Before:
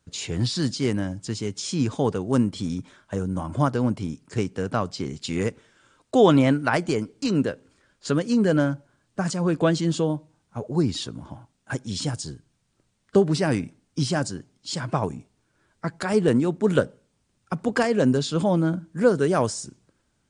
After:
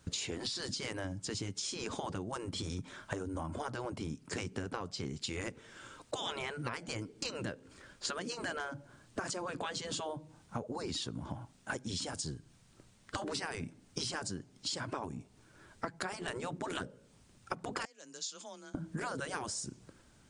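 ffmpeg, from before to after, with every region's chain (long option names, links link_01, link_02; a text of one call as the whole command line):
ffmpeg -i in.wav -filter_complex "[0:a]asettb=1/sr,asplit=3[link_01][link_02][link_03];[link_01]atrim=end=17.854[link_04];[link_02]atrim=start=17.85:end=18.75,asetpts=PTS-STARTPTS,afade=type=in:duration=0.004:curve=qsin,afade=type=out:start_time=0.896:duration=0.004:curve=qsin,bandpass=frequency=6500:width_type=q:width=4,afreqshift=23,aemphasis=mode=reproduction:type=50kf[link_05];[link_03]atrim=start=18.746[link_06];[link_04][link_05]acrossfade=duration=0.004:curve1=hsin:curve2=qsin[link_07];[link_07][link_06]acrossfade=duration=0.004:curve1=qsin:curve2=hsin,afftfilt=real='re*lt(hypot(re,im),0.282)':imag='im*lt(hypot(re,im),0.282)':win_size=1024:overlap=0.75,acompressor=threshold=-43dB:ratio=12,volume=7.5dB" out.wav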